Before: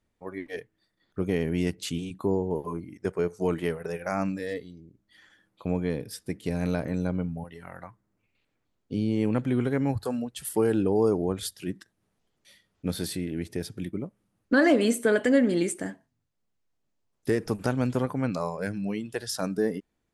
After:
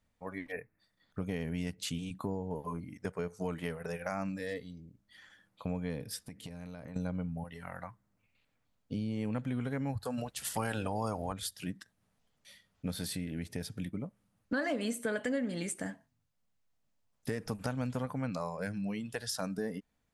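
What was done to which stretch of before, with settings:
0.52–0.8 spectral delete 2700–10000 Hz
6.21–6.96 compressor 10:1, threshold -39 dBFS
10.17–11.32 spectral limiter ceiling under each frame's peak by 19 dB
whole clip: bell 360 Hz -14 dB 0.35 oct; compressor 2.5:1, threshold -35 dBFS

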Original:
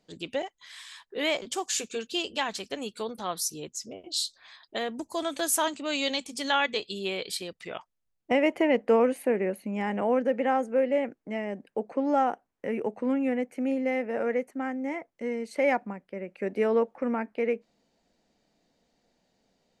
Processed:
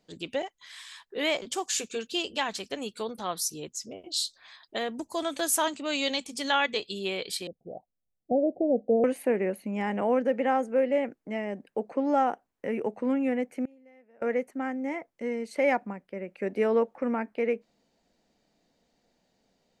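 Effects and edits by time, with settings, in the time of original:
7.47–9.04 rippled Chebyshev low-pass 780 Hz, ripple 3 dB
13.65–14.22 flipped gate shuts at -29 dBFS, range -28 dB

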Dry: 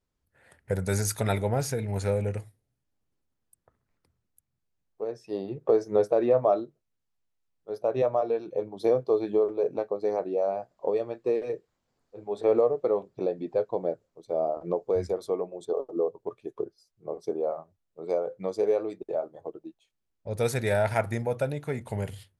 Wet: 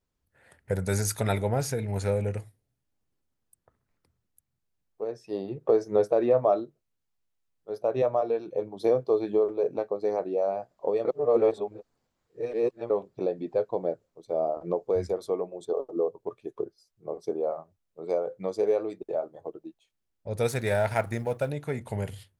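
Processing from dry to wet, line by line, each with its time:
11.05–12.9 reverse
20.47–21.49 G.711 law mismatch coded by A

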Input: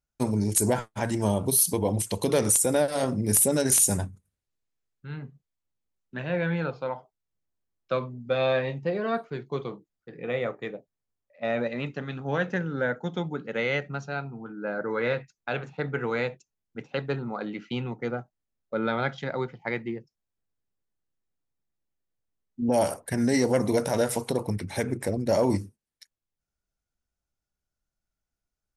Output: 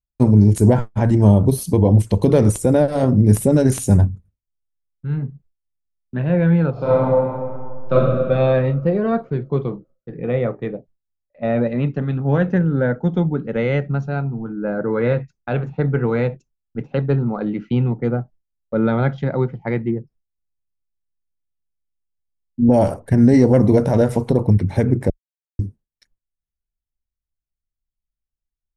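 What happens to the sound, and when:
6.72–7.93 reverb throw, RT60 2.1 s, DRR -10 dB
19.9–22.68 treble ducked by the level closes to 1600 Hz, closed at -33.5 dBFS
25.1–25.59 mute
whole clip: tilt -4 dB/oct; gate with hold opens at -52 dBFS; gain +4 dB

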